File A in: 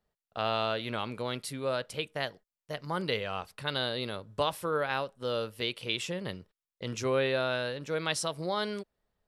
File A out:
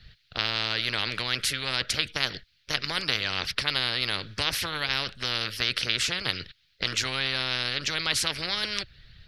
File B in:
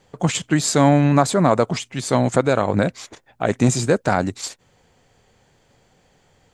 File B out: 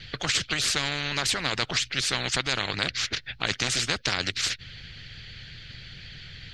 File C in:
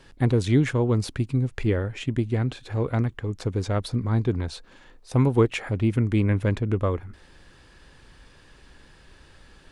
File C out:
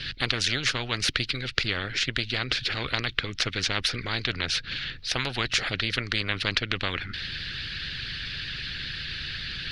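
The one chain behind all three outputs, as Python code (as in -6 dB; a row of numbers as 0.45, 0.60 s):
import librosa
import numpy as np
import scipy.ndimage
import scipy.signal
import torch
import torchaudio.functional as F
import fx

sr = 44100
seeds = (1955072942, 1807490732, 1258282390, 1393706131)

y = fx.hpss(x, sr, part='harmonic', gain_db=-10)
y = fx.curve_eq(y, sr, hz=(130.0, 220.0, 980.0, 1500.0, 4300.0, 7600.0), db=(0, -16, -28, -5, 4, -26))
y = fx.spectral_comp(y, sr, ratio=4.0)
y = y * 10.0 ** (-30 / 20.0) / np.sqrt(np.mean(np.square(y)))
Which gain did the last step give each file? +8.0, +7.5, +15.5 dB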